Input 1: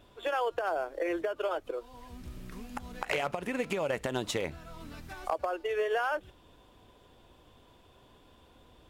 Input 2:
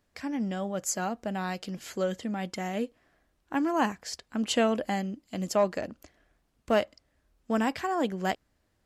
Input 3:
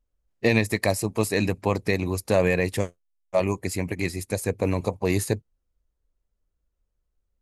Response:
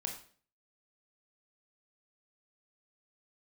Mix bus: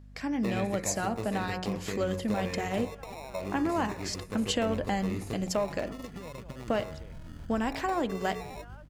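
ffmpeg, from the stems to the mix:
-filter_complex "[0:a]bass=frequency=250:gain=14,treble=frequency=4000:gain=1,adelay=2450,volume=-7dB,asplit=2[link_01][link_02];[link_02]volume=-16dB[link_03];[1:a]bandreject=frequency=91.71:width_type=h:width=4,bandreject=frequency=183.42:width_type=h:width=4,bandreject=frequency=275.13:width_type=h:width=4,bandreject=frequency=366.84:width_type=h:width=4,bandreject=frequency=458.55:width_type=h:width=4,bandreject=frequency=550.26:width_type=h:width=4,bandreject=frequency=641.97:width_type=h:width=4,bandreject=frequency=733.68:width_type=h:width=4,bandreject=frequency=825.39:width_type=h:width=4,bandreject=frequency=917.1:width_type=h:width=4,bandreject=frequency=1008.81:width_type=h:width=4,bandreject=frequency=1100.52:width_type=h:width=4,bandreject=frequency=1192.23:width_type=h:width=4,bandreject=frequency=1283.94:width_type=h:width=4,bandreject=frequency=1375.65:width_type=h:width=4,bandreject=frequency=1467.36:width_type=h:width=4,bandreject=frequency=1559.07:width_type=h:width=4,bandreject=frequency=1650.78:width_type=h:width=4,bandreject=frequency=1742.49:width_type=h:width=4,bandreject=frequency=1834.2:width_type=h:width=4,bandreject=frequency=1925.91:width_type=h:width=4,bandreject=frequency=2017.62:width_type=h:width=4,bandreject=frequency=2109.33:width_type=h:width=4,bandreject=frequency=2201.04:width_type=h:width=4,bandreject=frequency=2292.75:width_type=h:width=4,bandreject=frequency=2384.46:width_type=h:width=4,bandreject=frequency=2476.17:width_type=h:width=4,acompressor=threshold=-28dB:ratio=6,volume=2.5dB[link_04];[2:a]volume=-8.5dB,asplit=2[link_05][link_06];[link_06]volume=-8dB[link_07];[link_01][link_05]amix=inputs=2:normalize=0,acrusher=samples=28:mix=1:aa=0.000001,acompressor=threshold=-39dB:ratio=6,volume=0dB[link_08];[3:a]atrim=start_sample=2205[link_09];[link_07][link_09]afir=irnorm=-1:irlink=0[link_10];[link_03]aecho=0:1:209:1[link_11];[link_04][link_08][link_10][link_11]amix=inputs=4:normalize=0,highshelf=frequency=10000:gain=-6,aeval=exprs='val(0)+0.00355*(sin(2*PI*50*n/s)+sin(2*PI*2*50*n/s)/2+sin(2*PI*3*50*n/s)/3+sin(2*PI*4*50*n/s)/4+sin(2*PI*5*50*n/s)/5)':channel_layout=same"

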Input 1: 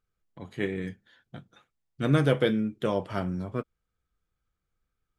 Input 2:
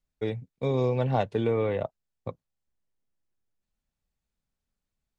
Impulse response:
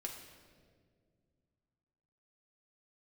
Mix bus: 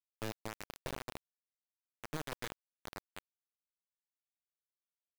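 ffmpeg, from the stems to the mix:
-filter_complex "[0:a]volume=-17dB,asplit=2[link_01][link_02];[1:a]highshelf=frequency=4000:gain=7.5,acompressor=threshold=-26dB:ratio=6,volume=-0.5dB,afade=type=out:start_time=0.72:duration=0.37:silence=0.237137,afade=type=in:start_time=1.93:duration=0.31:silence=0.446684,asplit=2[link_03][link_04];[link_04]volume=-3.5dB[link_05];[link_02]apad=whole_len=228789[link_06];[link_03][link_06]sidechaincompress=threshold=-53dB:ratio=8:attack=49:release=619[link_07];[link_05]aecho=0:1:227|454|681|908|1135|1362|1589|1816:1|0.52|0.27|0.141|0.0731|0.038|0.0198|0.0103[link_08];[link_01][link_07][link_08]amix=inputs=3:normalize=0,highpass=frequency=59:width=0.5412,highpass=frequency=59:width=1.3066,acrusher=bits=3:dc=4:mix=0:aa=0.000001"

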